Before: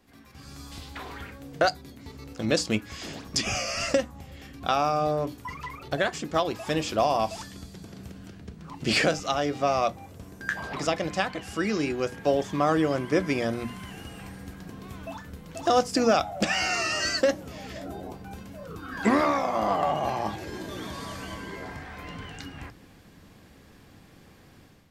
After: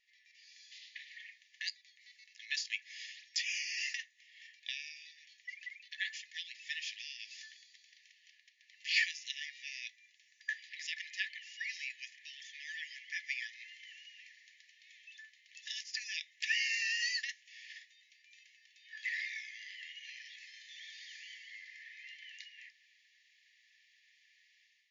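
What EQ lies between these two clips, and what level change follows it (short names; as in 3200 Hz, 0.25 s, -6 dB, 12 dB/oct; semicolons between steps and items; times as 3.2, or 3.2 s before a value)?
brick-wall FIR band-pass 1700–7200 Hz; tilt -3.5 dB/oct; 0.0 dB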